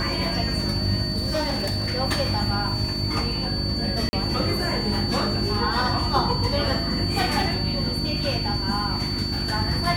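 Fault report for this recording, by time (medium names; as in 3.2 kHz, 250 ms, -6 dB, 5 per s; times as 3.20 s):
hum 50 Hz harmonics 7 -30 dBFS
whine 4.5 kHz -28 dBFS
1.10–1.94 s: clipped -20 dBFS
4.09–4.13 s: dropout 40 ms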